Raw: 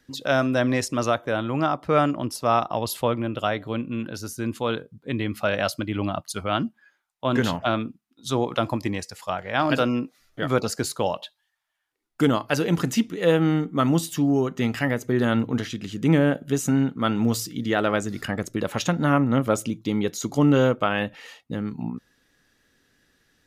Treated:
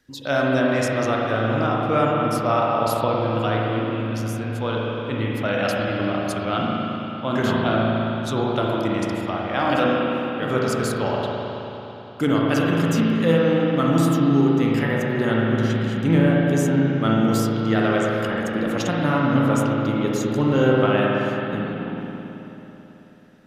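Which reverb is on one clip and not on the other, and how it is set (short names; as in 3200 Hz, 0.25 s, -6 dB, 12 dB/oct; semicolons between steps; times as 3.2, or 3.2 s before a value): spring tank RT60 3.6 s, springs 36/54 ms, chirp 75 ms, DRR -4 dB; gain -2.5 dB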